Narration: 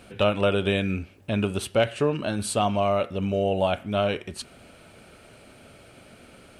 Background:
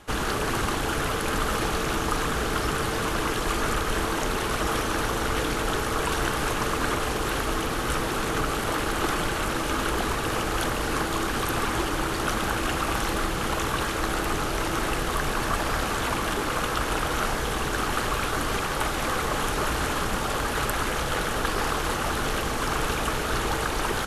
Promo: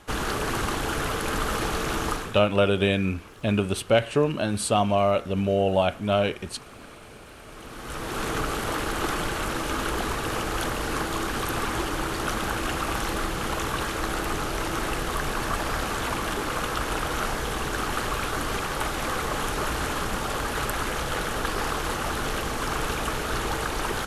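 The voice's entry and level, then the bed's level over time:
2.15 s, +1.5 dB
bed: 0:02.11 −1 dB
0:02.48 −21.5 dB
0:07.38 −21.5 dB
0:08.22 −1.5 dB

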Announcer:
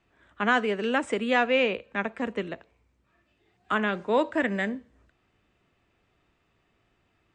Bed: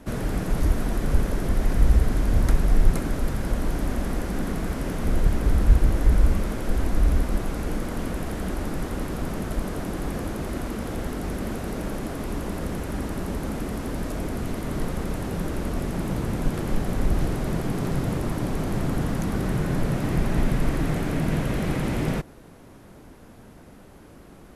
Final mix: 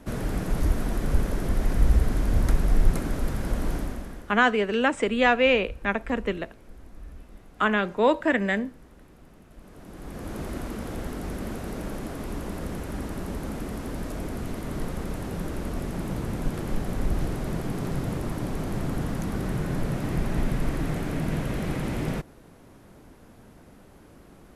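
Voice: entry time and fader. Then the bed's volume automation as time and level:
3.90 s, +3.0 dB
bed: 0:03.75 −2 dB
0:04.50 −23 dB
0:09.50 −23 dB
0:10.37 −3.5 dB

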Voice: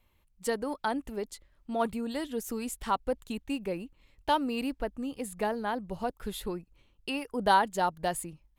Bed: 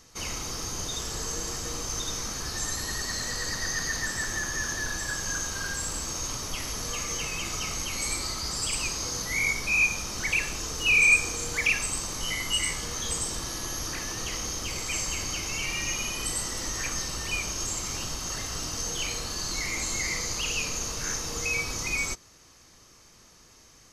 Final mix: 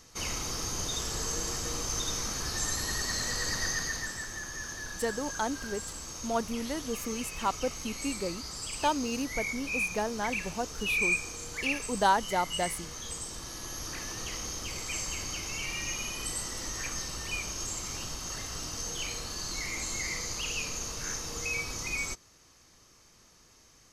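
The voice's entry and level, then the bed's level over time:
4.55 s, −1.0 dB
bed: 0:03.64 −0.5 dB
0:04.28 −8.5 dB
0:13.28 −8.5 dB
0:14.02 −4.5 dB

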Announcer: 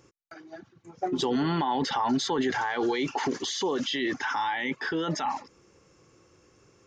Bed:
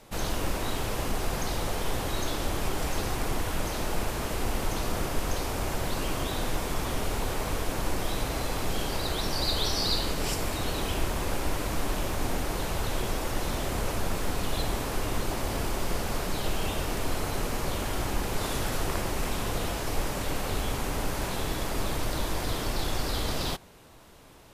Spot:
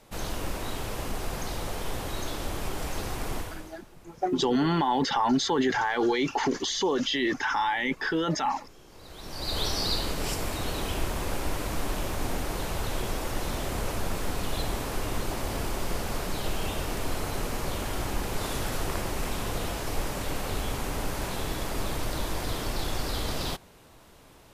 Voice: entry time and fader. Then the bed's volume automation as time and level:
3.20 s, +2.0 dB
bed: 0:03.38 −3 dB
0:03.87 −24.5 dB
0:08.86 −24.5 dB
0:09.58 −1 dB

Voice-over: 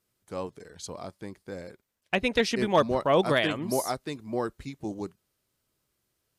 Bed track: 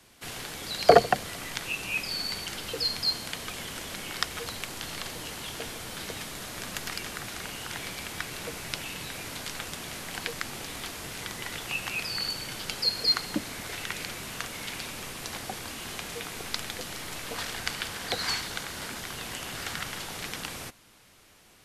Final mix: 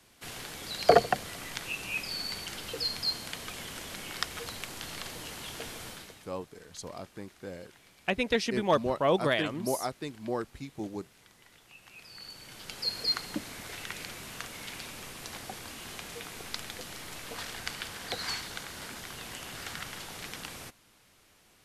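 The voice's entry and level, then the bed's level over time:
5.95 s, −3.0 dB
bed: 0:05.88 −3.5 dB
0:06.33 −22 dB
0:11.76 −22 dB
0:12.92 −5 dB

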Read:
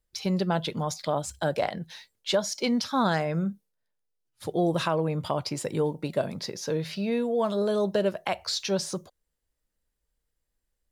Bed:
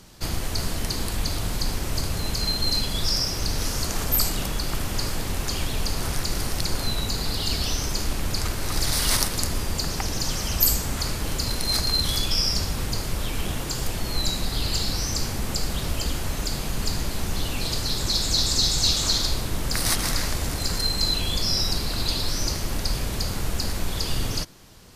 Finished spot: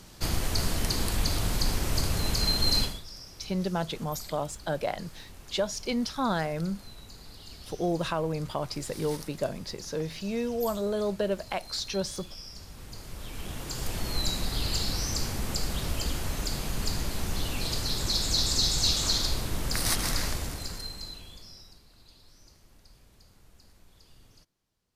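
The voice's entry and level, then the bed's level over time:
3.25 s, −3.5 dB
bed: 0:02.83 −1 dB
0:03.04 −21 dB
0:12.52 −21 dB
0:13.98 −4 dB
0:20.28 −4 dB
0:21.84 −31 dB

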